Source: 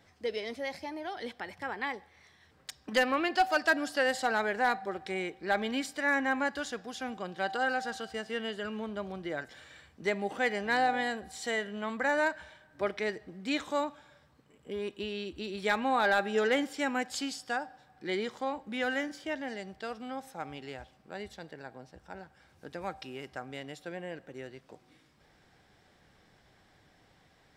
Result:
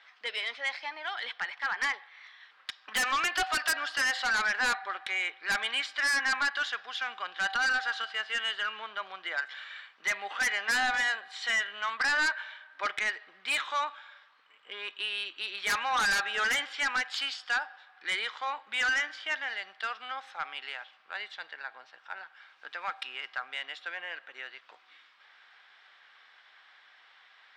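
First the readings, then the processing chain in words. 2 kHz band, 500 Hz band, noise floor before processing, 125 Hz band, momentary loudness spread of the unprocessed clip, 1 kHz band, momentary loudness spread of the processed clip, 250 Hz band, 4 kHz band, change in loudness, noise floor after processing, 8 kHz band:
+5.0 dB, -12.5 dB, -64 dBFS, under -10 dB, 17 LU, -1.0 dB, 15 LU, -16.0 dB, +7.5 dB, +2.0 dB, -61 dBFS, +7.0 dB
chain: Chebyshev band-pass 1200–3500 Hz, order 2; in parallel at -7 dB: sine folder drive 15 dB, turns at -16.5 dBFS; on the sum: gain -3 dB

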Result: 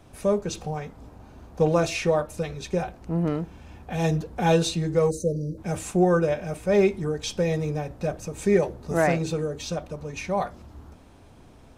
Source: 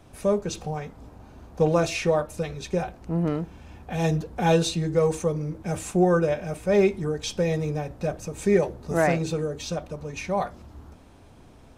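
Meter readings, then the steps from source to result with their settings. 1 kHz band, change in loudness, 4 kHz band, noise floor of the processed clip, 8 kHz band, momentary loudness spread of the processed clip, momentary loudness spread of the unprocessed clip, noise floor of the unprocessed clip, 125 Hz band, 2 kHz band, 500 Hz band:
0.0 dB, 0.0 dB, 0.0 dB, -50 dBFS, 0.0 dB, 11 LU, 11 LU, -50 dBFS, 0.0 dB, 0.0 dB, 0.0 dB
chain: spectral delete 5.1–5.58, 640–3800 Hz

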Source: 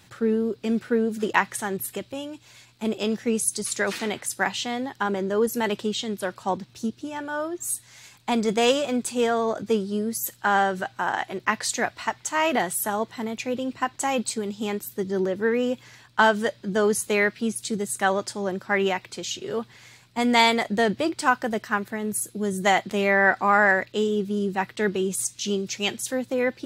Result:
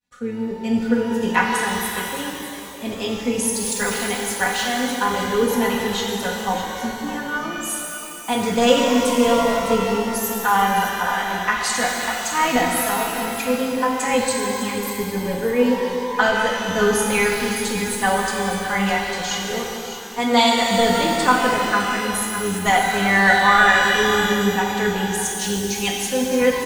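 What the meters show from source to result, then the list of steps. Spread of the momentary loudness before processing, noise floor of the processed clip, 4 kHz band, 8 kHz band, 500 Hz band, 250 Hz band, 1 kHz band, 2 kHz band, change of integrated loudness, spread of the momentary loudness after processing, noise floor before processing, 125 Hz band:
10 LU, -31 dBFS, +7.0 dB, +5.5 dB, +3.5 dB, +4.5 dB, +6.0 dB, +5.5 dB, +5.0 dB, 10 LU, -55 dBFS, +5.0 dB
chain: octaver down 1 oct, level -6 dB; expander -41 dBFS; on a send: echo 0.607 s -11.5 dB; on the sum: flange 0.14 Hz, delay 7.4 ms, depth 9 ms, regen -72%; spectral noise reduction 7 dB; comb 4.1 ms, depth 94%; shimmer reverb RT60 2.6 s, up +12 st, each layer -8 dB, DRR -0.5 dB; gain +3 dB

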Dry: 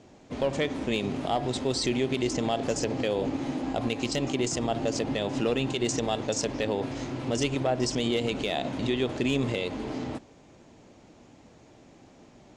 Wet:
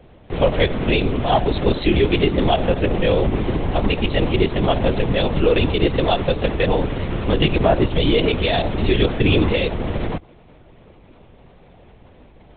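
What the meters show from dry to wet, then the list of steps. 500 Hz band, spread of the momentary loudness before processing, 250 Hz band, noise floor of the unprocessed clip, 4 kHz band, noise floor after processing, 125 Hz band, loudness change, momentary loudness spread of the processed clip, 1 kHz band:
+10.0 dB, 4 LU, +8.0 dB, -55 dBFS, +8.5 dB, -48 dBFS, +13.0 dB, +9.5 dB, 5 LU, +10.0 dB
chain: in parallel at -5 dB: bit-crush 6-bit; on the sum: LPC vocoder at 8 kHz whisper; gain +7 dB

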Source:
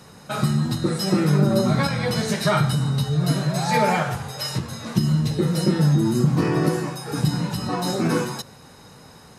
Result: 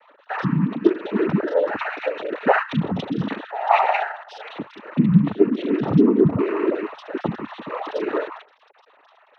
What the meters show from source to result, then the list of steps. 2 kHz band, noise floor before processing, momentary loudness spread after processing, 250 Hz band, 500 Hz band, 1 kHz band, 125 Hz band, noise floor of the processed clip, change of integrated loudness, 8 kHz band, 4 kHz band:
+1.5 dB, -46 dBFS, 14 LU, +1.0 dB, +3.5 dB, +2.5 dB, -6.0 dB, -56 dBFS, 0.0 dB, under -25 dB, -10.5 dB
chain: sine-wave speech; noise vocoder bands 12

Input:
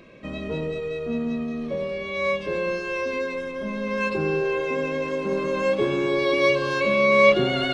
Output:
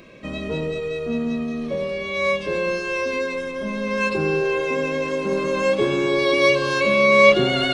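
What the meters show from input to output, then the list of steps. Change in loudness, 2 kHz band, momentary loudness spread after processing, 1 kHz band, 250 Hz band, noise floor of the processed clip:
+3.0 dB, +4.0 dB, 12 LU, +3.0 dB, +2.5 dB, -30 dBFS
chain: high shelf 4800 Hz +8 dB; gain +2.5 dB

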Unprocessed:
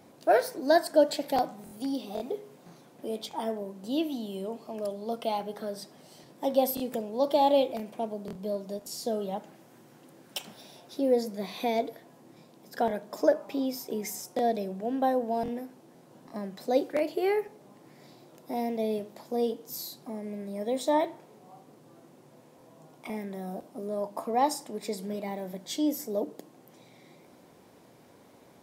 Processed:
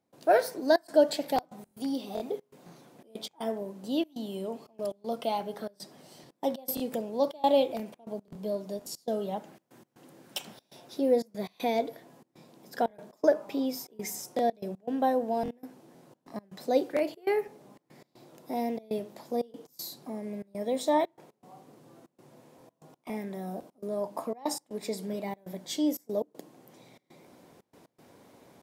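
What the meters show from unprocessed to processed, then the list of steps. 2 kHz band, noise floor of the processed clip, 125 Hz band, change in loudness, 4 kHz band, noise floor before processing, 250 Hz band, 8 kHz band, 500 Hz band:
-1.0 dB, -77 dBFS, -1.0 dB, -1.0 dB, -1.0 dB, -57 dBFS, -1.0 dB, -1.0 dB, -1.0 dB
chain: step gate ".xxxxx.xxxx.x" 119 bpm -24 dB

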